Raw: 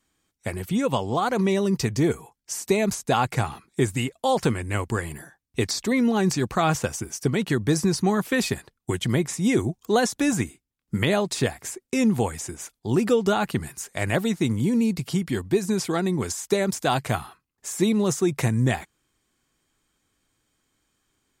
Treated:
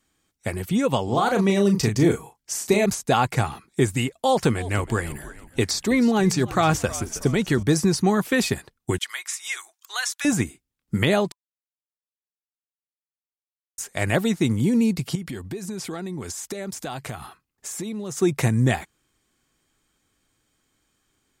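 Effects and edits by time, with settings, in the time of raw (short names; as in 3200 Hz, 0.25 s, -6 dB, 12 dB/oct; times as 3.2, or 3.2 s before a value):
1.04–2.86 doubler 35 ms -6 dB
4.15–7.63 frequency-shifting echo 0.319 s, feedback 45%, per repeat -66 Hz, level -16.5 dB
8.98–10.25 HPF 1200 Hz 24 dB/oct
11.32–13.78 mute
15.15–18.17 compressor 5:1, threshold -31 dBFS
whole clip: notch 1000 Hz, Q 23; gain +2 dB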